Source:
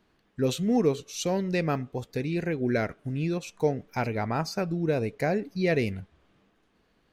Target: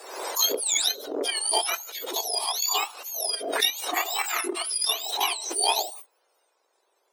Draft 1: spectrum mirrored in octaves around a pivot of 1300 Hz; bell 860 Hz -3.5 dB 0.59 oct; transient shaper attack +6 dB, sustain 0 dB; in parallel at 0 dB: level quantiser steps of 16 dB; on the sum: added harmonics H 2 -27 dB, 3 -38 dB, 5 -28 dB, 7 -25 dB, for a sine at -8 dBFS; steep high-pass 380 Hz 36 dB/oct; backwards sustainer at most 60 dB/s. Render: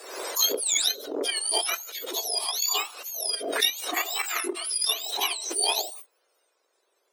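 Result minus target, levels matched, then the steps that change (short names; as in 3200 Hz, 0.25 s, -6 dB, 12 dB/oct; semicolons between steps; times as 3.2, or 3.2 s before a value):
1000 Hz band -4.0 dB
change: bell 860 Hz +3.5 dB 0.59 oct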